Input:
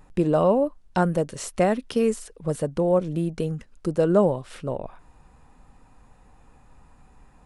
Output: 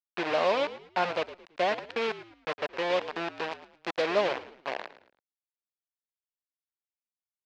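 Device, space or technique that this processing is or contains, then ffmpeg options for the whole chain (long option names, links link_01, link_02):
hand-held game console: -filter_complex "[0:a]acrusher=bits=3:mix=0:aa=0.000001,highpass=420,equalizer=frequency=700:width_type=q:width=4:gain=4,equalizer=frequency=1000:width_type=q:width=4:gain=4,equalizer=frequency=1700:width_type=q:width=4:gain=4,equalizer=frequency=2500:width_type=q:width=4:gain=5,lowpass=frequency=4500:width=0.5412,lowpass=frequency=4500:width=1.3066,asettb=1/sr,asplit=3[link_01][link_02][link_03];[link_01]atrim=end=3.514[link_04];[link_02]atrim=start=3.51:end=4.02,asetpts=PTS-STARTPTS,afade=type=in:duration=0.004:curve=qsin,afade=type=out:start_time=0.506:duration=0.004:curve=qsin,highshelf=frequency=5000:gain=8.5[link_05];[link_03]atrim=start=4.016[link_06];[link_04][link_05]acrossfade=duration=0.004:curve1=hsin:curve2=qsin[link_07];[link_07][link_06]acrossfade=duration=0.004:curve1=qsin:curve2=hsin,asplit=4[link_08][link_09][link_10][link_11];[link_09]adelay=110,afreqshift=-58,volume=-15dB[link_12];[link_10]adelay=220,afreqshift=-116,volume=-24.4dB[link_13];[link_11]adelay=330,afreqshift=-174,volume=-33.7dB[link_14];[link_08][link_12][link_13][link_14]amix=inputs=4:normalize=0,volume=-7dB"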